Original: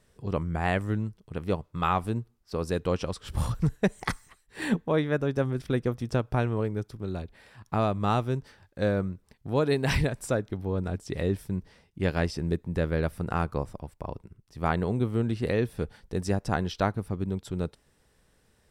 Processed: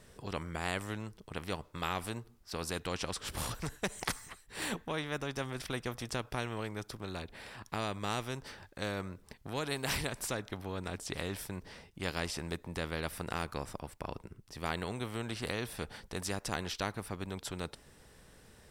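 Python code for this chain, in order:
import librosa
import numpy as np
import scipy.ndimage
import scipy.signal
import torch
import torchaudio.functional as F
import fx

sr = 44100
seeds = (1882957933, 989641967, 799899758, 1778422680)

y = fx.spectral_comp(x, sr, ratio=2.0)
y = F.gain(torch.from_numpy(y), -3.0).numpy()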